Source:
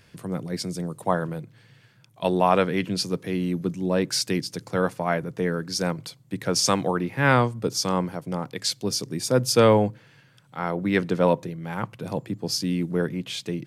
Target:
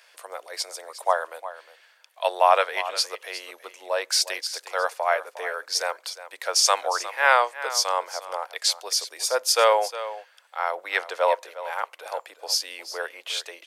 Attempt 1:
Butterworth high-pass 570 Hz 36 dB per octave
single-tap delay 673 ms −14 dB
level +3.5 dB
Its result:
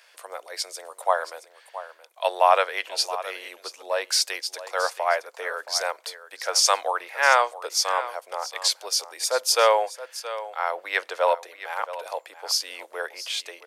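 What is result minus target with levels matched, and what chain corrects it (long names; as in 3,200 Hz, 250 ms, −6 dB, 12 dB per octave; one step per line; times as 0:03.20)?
echo 315 ms late
Butterworth high-pass 570 Hz 36 dB per octave
single-tap delay 358 ms −14 dB
level +3.5 dB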